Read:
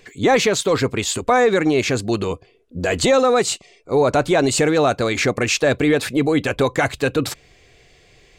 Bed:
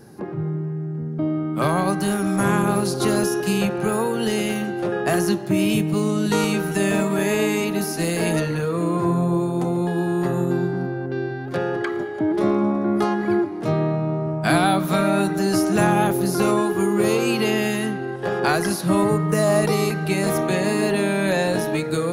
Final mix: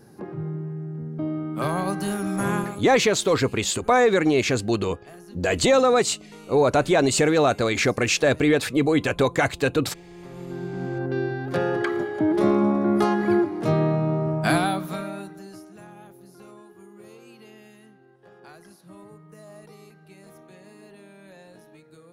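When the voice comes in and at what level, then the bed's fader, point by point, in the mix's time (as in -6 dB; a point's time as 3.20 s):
2.60 s, -2.5 dB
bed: 2.59 s -5 dB
2.88 s -25 dB
10.05 s -25 dB
11.01 s 0 dB
14.40 s 0 dB
15.77 s -27.5 dB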